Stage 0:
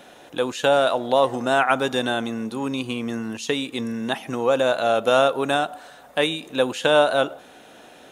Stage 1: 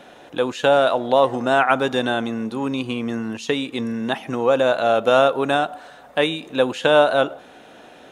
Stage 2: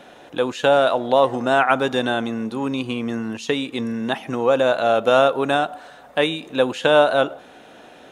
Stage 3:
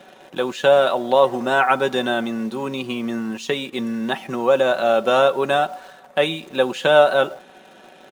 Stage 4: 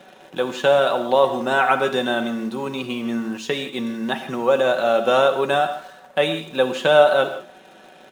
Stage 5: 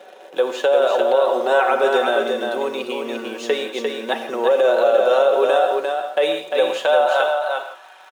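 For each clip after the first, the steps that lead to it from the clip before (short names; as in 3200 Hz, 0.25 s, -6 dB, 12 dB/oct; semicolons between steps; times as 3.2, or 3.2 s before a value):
high shelf 5900 Hz -10.5 dB; gain +2.5 dB
nothing audible
HPF 110 Hz 12 dB/oct; comb 5.3 ms, depth 52%; in parallel at -11 dB: bit-crush 6-bit; on the sum: gain -3 dB
non-linear reverb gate 0.19 s flat, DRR 8.5 dB; gain -1 dB
high-pass sweep 470 Hz -> 1000 Hz, 6.29–7.55; limiter -9 dBFS, peak gain reduction 10 dB; echo 0.349 s -4.5 dB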